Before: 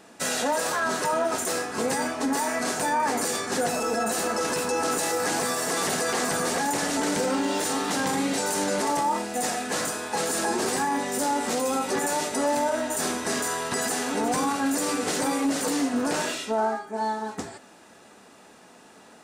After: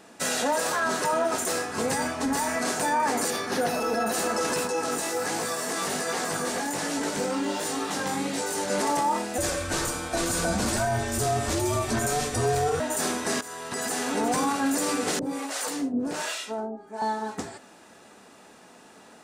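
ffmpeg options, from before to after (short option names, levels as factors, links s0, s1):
-filter_complex "[0:a]asettb=1/sr,asplit=3[s0][s1][s2];[s0]atrim=end=1.414[s3];[s1]atrim=start=1.41:end=2.56,asetpts=PTS-STARTPTS,afade=t=in:d=0.004:c=qsin,afade=t=out:st=1.146:d=0.004:c=qsin,asubboost=boost=11:cutoff=150[s4];[s2]atrim=start=2.556[s5];[s3][s4]acrossfade=d=0.004:c1=hsin:c2=qsin[s6];[s6][s5]acrossfade=d=0.004:c1=qsin:c2=hsin,asettb=1/sr,asplit=3[s7][s8][s9];[s7]atrim=end=3.304[s10];[s8]atrim=start=3.3:end=4.14,asetpts=PTS-STARTPTS,afade=t=in:d=0.004:c=qsin,afade=t=out:st=0.836:d=0.004:c=qsin,equalizer=f=7700:t=o:w=0.33:g=-13.5[s11];[s9]atrim=start=4.136[s12];[s10][s11]acrossfade=d=0.004:c1=hsin:c2=qsin[s13];[s13][s12]acrossfade=d=0.004:c1=qsin:c2=hsin,asettb=1/sr,asplit=3[s14][s15][s16];[s14]atrim=end=4.674[s17];[s15]atrim=start=4.67:end=8.7,asetpts=PTS-STARTPTS,afade=t=in:d=0.004:c=qsin,afade=t=out:st=4.026:d=0.004:c=qsin,flanger=delay=17.5:depth=3.8:speed=1.3[s18];[s16]atrim=start=8.696[s19];[s17][s18]acrossfade=d=0.004:c1=hsin:c2=qsin[s20];[s20][s19]acrossfade=d=0.004:c1=qsin:c2=hsin,asettb=1/sr,asplit=3[s21][s22][s23];[s21]atrim=end=9.384[s24];[s22]atrim=start=9.38:end=12.8,asetpts=PTS-STARTPTS,afade=t=in:d=0.004:c=qsin,afade=t=out:st=3.416:d=0.004:c=qsin,afreqshift=-160[s25];[s23]atrim=start=12.796[s26];[s24][s25]acrossfade=d=0.004:c1=hsin:c2=qsin[s27];[s27][s26]acrossfade=d=0.004:c1=qsin:c2=hsin,asettb=1/sr,asplit=3[s28][s29][s30];[s28]atrim=end=15.194[s31];[s29]atrim=start=15.19:end=17.02,asetpts=PTS-STARTPTS,afade=t=in:d=0.004:c=qsin,afade=t=out:st=1.826:d=0.004:c=qsin,acrossover=split=540[s32][s33];[s32]aeval=exprs='val(0)*(1-1/2+1/2*cos(2*PI*1.3*n/s))':c=same[s34];[s33]aeval=exprs='val(0)*(1-1/2-1/2*cos(2*PI*1.3*n/s))':c=same[s35];[s34][s35]amix=inputs=2:normalize=0[s36];[s30]atrim=start=17.016[s37];[s31][s36]acrossfade=d=0.004:c1=hsin:c2=qsin[s38];[s38][s37]acrossfade=d=0.004:c1=qsin:c2=hsin,asplit=2[s39][s40];[s39]atrim=end=13.41,asetpts=PTS-STARTPTS,afade=t=out:st=13.406:d=0.004:c=hsin:silence=0.188365[s41];[s40]atrim=start=13.41,asetpts=PTS-STARTPTS,afade=t=in:d=0.67:silence=0.188365[s42];[s41][s42]concat=n=2:v=0:a=1"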